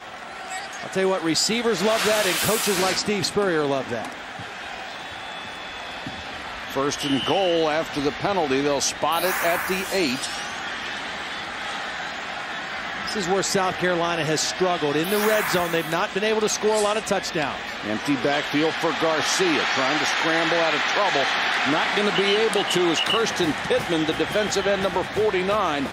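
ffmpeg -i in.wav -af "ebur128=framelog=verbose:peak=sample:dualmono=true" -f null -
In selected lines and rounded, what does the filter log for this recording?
Integrated loudness:
  I:         -19.5 LUFS
  Threshold: -29.7 LUFS
Loudness range:
  LRA:         6.9 LU
  Threshold: -39.7 LUFS
  LRA low:   -24.1 LUFS
  LRA high:  -17.3 LUFS
Sample peak:
  Peak:       -8.2 dBFS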